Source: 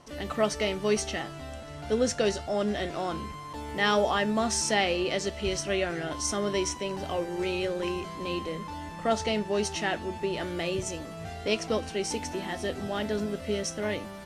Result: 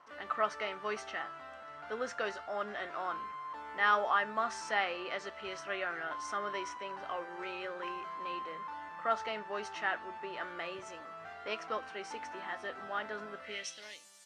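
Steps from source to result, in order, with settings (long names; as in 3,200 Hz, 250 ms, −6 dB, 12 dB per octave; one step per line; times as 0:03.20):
band-pass filter sweep 1,300 Hz → 7,400 Hz, 0:13.39–0:13.99
level +3 dB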